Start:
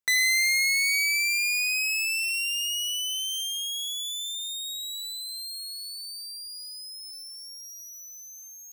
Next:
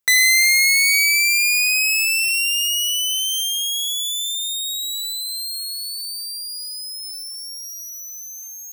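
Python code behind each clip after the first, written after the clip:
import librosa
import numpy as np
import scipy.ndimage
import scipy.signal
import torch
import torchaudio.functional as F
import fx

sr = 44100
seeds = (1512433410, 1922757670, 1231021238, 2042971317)

y = fx.high_shelf(x, sr, hz=9400.0, db=6.0)
y = y * librosa.db_to_amplitude(7.5)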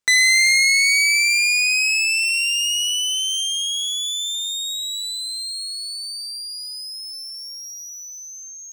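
y = scipy.signal.savgol_filter(x, 9, 4, mode='constant')
y = fx.echo_feedback(y, sr, ms=196, feedback_pct=51, wet_db=-16.5)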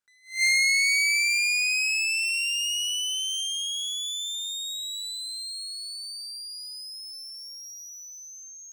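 y = fx.peak_eq(x, sr, hz=1500.0, db=11.5, octaves=0.37)
y = fx.attack_slew(y, sr, db_per_s=190.0)
y = y * librosa.db_to_amplitude(-7.0)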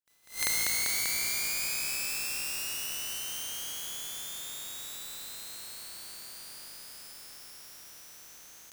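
y = fx.spec_flatten(x, sr, power=0.24)
y = y * librosa.db_to_amplitude(-6.5)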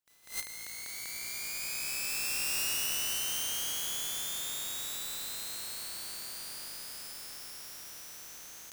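y = fx.over_compress(x, sr, threshold_db=-35.0, ratio=-0.5)
y = y * librosa.db_to_amplitude(1.0)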